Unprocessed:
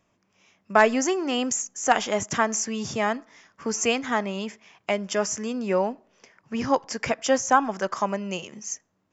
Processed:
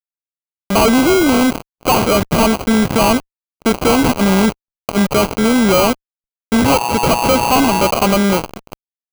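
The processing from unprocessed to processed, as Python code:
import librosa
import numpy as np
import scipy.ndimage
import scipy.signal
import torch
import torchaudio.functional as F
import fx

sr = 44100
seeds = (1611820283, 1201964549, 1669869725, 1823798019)

y = scipy.signal.sosfilt(scipy.signal.butter(2, 3300.0, 'lowpass', fs=sr, output='sos'), x)
y = fx.over_compress(y, sr, threshold_db=-30.0, ratio=-0.5, at=(3.97, 5.02), fade=0.02)
y = fx.dmg_tone(y, sr, hz=960.0, level_db=-33.0, at=(6.64, 7.9), fade=0.02)
y = fx.fuzz(y, sr, gain_db=35.0, gate_db=-38.0)
y = fx.sample_hold(y, sr, seeds[0], rate_hz=1800.0, jitter_pct=0)
y = y * 10.0 ** (3.5 / 20.0)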